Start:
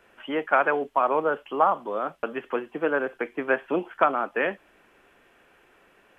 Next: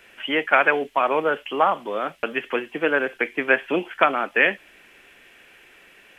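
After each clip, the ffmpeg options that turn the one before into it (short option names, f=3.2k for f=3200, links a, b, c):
-af "highshelf=f=1.6k:t=q:w=1.5:g=8,volume=3dB"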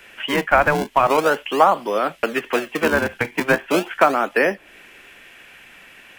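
-filter_complex "[0:a]acrossover=split=410|1300[a][b][c];[a]acrusher=samples=41:mix=1:aa=0.000001:lfo=1:lforange=65.6:lforate=0.39[d];[c]acompressor=threshold=-31dB:ratio=6[e];[d][b][e]amix=inputs=3:normalize=0,volume=6dB"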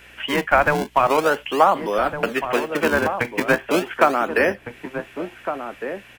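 -filter_complex "[0:a]aeval=exprs='val(0)+0.002*(sin(2*PI*60*n/s)+sin(2*PI*2*60*n/s)/2+sin(2*PI*3*60*n/s)/3+sin(2*PI*4*60*n/s)/4+sin(2*PI*5*60*n/s)/5)':c=same,asplit=2[a][b];[b]adelay=1458,volume=-8dB,highshelf=f=4k:g=-32.8[c];[a][c]amix=inputs=2:normalize=0,volume=-1dB"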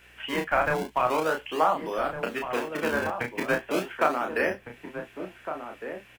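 -filter_complex "[0:a]acrusher=bits=10:mix=0:aa=0.000001,asplit=2[a][b];[b]adelay=32,volume=-4dB[c];[a][c]amix=inputs=2:normalize=0,volume=-9dB"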